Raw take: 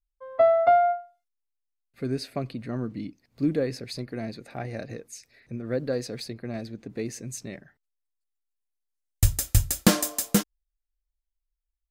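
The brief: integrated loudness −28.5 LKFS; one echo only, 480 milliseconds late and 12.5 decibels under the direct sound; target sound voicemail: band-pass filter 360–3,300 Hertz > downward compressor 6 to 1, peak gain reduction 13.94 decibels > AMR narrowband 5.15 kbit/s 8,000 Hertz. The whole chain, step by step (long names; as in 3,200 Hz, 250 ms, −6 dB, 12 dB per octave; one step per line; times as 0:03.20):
band-pass filter 360–3,300 Hz
single-tap delay 480 ms −12.5 dB
downward compressor 6 to 1, threshold −30 dBFS
level +11 dB
AMR narrowband 5.15 kbit/s 8,000 Hz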